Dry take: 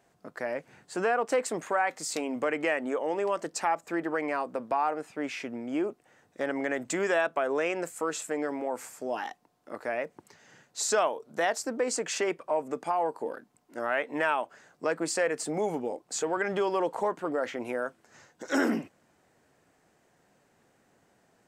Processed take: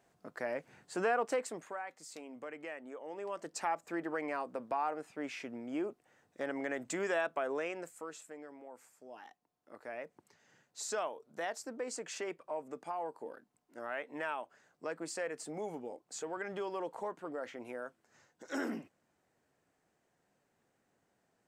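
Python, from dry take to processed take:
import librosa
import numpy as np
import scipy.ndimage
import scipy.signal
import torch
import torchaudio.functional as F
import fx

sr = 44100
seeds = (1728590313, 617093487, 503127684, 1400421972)

y = fx.gain(x, sr, db=fx.line((1.22, -4.5), (1.85, -16.5), (2.98, -16.5), (3.61, -7.0), (7.48, -7.0), (8.46, -19.0), (9.08, -19.0), (10.05, -11.0)))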